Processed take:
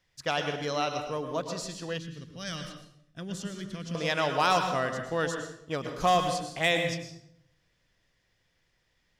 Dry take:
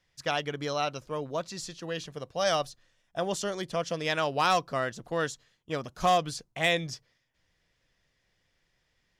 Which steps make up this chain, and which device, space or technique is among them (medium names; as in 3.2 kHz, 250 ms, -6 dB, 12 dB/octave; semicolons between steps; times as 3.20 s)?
bathroom (reverberation RT60 0.70 s, pre-delay 101 ms, DRR 5.5 dB); 1.98–3.95 s: FFT filter 240 Hz 0 dB, 740 Hz -23 dB, 1.6 kHz -7 dB